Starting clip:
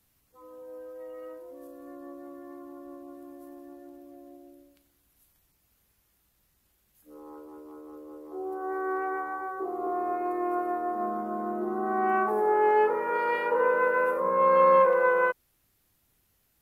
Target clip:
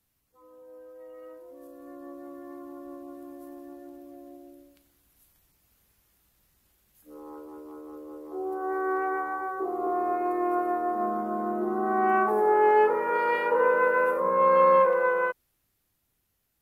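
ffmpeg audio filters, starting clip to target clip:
ffmpeg -i in.wav -af "dynaudnorm=framelen=170:gausssize=21:maxgain=8dB,volume=-5.5dB" out.wav

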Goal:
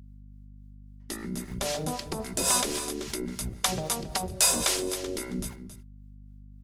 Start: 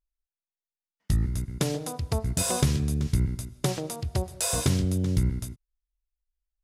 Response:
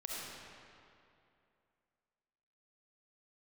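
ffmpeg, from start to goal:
-filter_complex "[0:a]afftfilt=real='re*lt(hypot(re,im),0.158)':imag='im*lt(hypot(re,im),0.158)':win_size=1024:overlap=0.75,aecho=1:1:5.1:0.35,aecho=1:1:272:0.266,acrossover=split=120|720|3200[link_01][link_02][link_03][link_04];[link_01]acrusher=samples=39:mix=1:aa=0.000001:lfo=1:lforange=62.4:lforate=2.9[link_05];[link_05][link_02][link_03][link_04]amix=inputs=4:normalize=0,acrossover=split=570[link_06][link_07];[link_06]aeval=exprs='val(0)*(1-0.7/2+0.7/2*cos(2*PI*3.7*n/s))':channel_layout=same[link_08];[link_07]aeval=exprs='val(0)*(1-0.7/2-0.7/2*cos(2*PI*3.7*n/s))':channel_layout=same[link_09];[link_08][link_09]amix=inputs=2:normalize=0,aeval=exprs='val(0)+0.002*(sin(2*PI*50*n/s)+sin(2*PI*2*50*n/s)/2+sin(2*PI*3*50*n/s)/3+sin(2*PI*4*50*n/s)/4+sin(2*PI*5*50*n/s)/5)':channel_layout=same,volume=7.5dB"

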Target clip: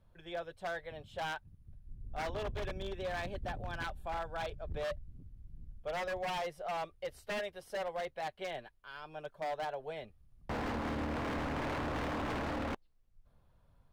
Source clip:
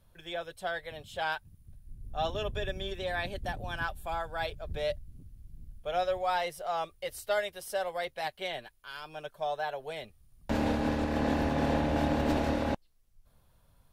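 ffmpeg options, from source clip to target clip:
ffmpeg -i in.wav -af "lowpass=frequency=1700:poles=1,aeval=exprs='0.0335*(abs(mod(val(0)/0.0335+3,4)-2)-1)':channel_layout=same,volume=-2dB" out.wav

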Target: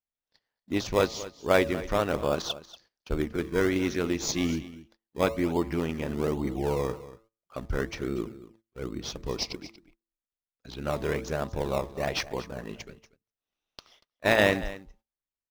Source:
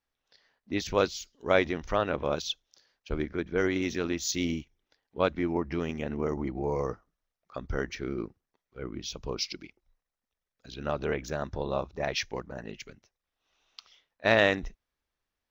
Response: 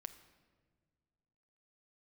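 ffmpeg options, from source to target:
-filter_complex "[0:a]bandreject=frequency=111.7:width_type=h:width=4,bandreject=frequency=223.4:width_type=h:width=4,bandreject=frequency=335.1:width_type=h:width=4,bandreject=frequency=446.8:width_type=h:width=4,bandreject=frequency=558.5:width_type=h:width=4,bandreject=frequency=670.2:width_type=h:width=4,bandreject=frequency=781.9:width_type=h:width=4,bandreject=frequency=893.6:width_type=h:width=4,bandreject=frequency=1005.3:width_type=h:width=4,bandreject=frequency=1117:width_type=h:width=4,bandreject=frequency=1228.7:width_type=h:width=4,asplit=2[link_01][link_02];[link_02]acrusher=samples=21:mix=1:aa=0.000001:lfo=1:lforange=21:lforate=1.2,volume=-8dB[link_03];[link_01][link_03]amix=inputs=2:normalize=0,aecho=1:1:236:0.15,agate=range=-17dB:threshold=-59dB:ratio=16:detection=peak"

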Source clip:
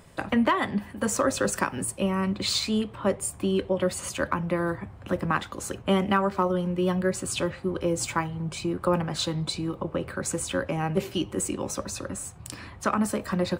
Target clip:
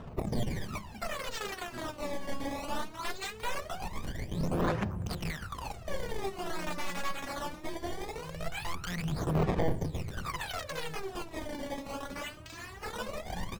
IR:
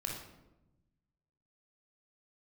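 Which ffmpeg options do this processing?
-filter_complex "[0:a]alimiter=limit=-21.5dB:level=0:latency=1:release=90,acompressor=threshold=-35dB:ratio=2,aecho=1:1:594|1188|1782:0.178|0.0516|0.015,aeval=exprs='(mod(28.2*val(0)+1,2)-1)/28.2':channel_layout=same,equalizer=frequency=310:width=6.1:gain=-6.5,bandreject=frequency=550:width=12,bandreject=frequency=94.32:width_type=h:width=4,bandreject=frequency=188.64:width_type=h:width=4,bandreject=frequency=282.96:width_type=h:width=4,bandreject=frequency=377.28:width_type=h:width=4,bandreject=frequency=471.6:width_type=h:width=4,bandreject=frequency=565.92:width_type=h:width=4,bandreject=frequency=660.24:width_type=h:width=4,bandreject=frequency=754.56:width_type=h:width=4,bandreject=frequency=848.88:width_type=h:width=4,bandreject=frequency=943.2:width_type=h:width=4,acrusher=samples=19:mix=1:aa=0.000001:lfo=1:lforange=30.4:lforate=0.54,highshelf=frequency=12000:gain=-7.5,asplit=2[link_01][link_02];[1:a]atrim=start_sample=2205[link_03];[link_02][link_03]afir=irnorm=-1:irlink=0,volume=-13dB[link_04];[link_01][link_04]amix=inputs=2:normalize=0,aphaser=in_gain=1:out_gain=1:delay=3.6:decay=0.79:speed=0.21:type=sinusoidal,volume=-6dB"

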